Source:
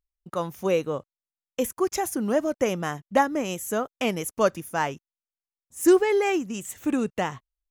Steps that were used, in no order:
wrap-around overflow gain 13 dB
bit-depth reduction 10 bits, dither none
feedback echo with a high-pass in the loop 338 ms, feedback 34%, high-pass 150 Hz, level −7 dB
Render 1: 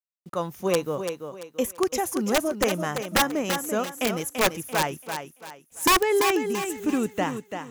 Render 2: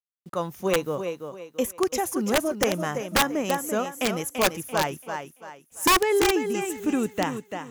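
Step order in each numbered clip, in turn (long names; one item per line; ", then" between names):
wrap-around overflow, then bit-depth reduction, then feedback echo with a high-pass in the loop
bit-depth reduction, then feedback echo with a high-pass in the loop, then wrap-around overflow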